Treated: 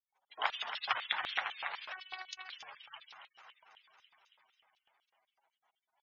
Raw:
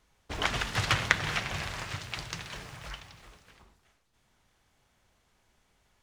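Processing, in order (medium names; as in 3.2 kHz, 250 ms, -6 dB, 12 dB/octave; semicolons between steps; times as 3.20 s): gate with hold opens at -59 dBFS; echo whose repeats swap between lows and highs 138 ms, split 1 kHz, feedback 82%, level -7 dB; spectral gate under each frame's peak -15 dB strong; LFO high-pass square 4 Hz 820–3400 Hz; 1.92–2.49 s: robot voice 375 Hz; trim -6.5 dB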